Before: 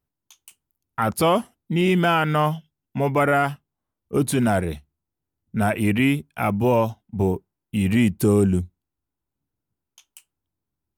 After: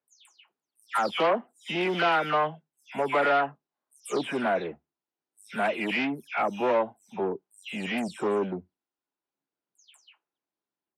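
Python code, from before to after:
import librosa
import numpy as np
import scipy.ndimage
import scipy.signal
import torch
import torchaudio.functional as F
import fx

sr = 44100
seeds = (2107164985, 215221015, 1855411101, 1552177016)

y = fx.spec_delay(x, sr, highs='early', ms=227)
y = fx.fold_sine(y, sr, drive_db=5, ceiling_db=-8.0)
y = fx.bandpass_edges(y, sr, low_hz=400.0, high_hz=4900.0)
y = y * librosa.db_to_amplitude(-9.0)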